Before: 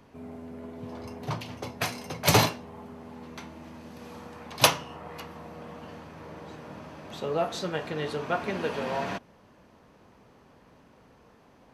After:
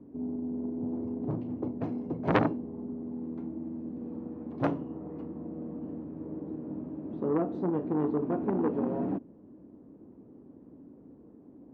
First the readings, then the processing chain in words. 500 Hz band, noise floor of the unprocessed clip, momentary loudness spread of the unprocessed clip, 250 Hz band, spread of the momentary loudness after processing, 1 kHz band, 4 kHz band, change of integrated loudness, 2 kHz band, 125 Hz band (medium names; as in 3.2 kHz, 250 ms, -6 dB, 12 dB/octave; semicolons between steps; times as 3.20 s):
-1.5 dB, -58 dBFS, 22 LU, +7.0 dB, 23 LU, -6.5 dB, under -20 dB, -4.5 dB, -10.5 dB, -3.0 dB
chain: band-pass filter 300 Hz, Q 3.5; tilt EQ -3.5 dB/octave; transformer saturation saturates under 1.4 kHz; trim +7 dB